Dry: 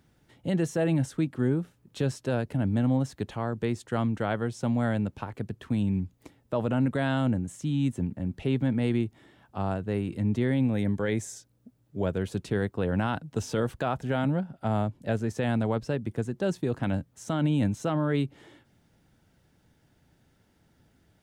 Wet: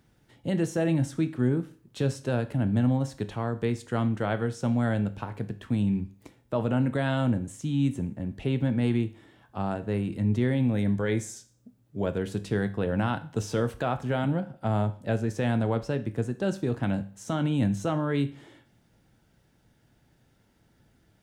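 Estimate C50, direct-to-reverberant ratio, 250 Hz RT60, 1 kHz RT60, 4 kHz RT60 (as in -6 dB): 16.0 dB, 10.0 dB, 0.45 s, 0.45 s, 0.45 s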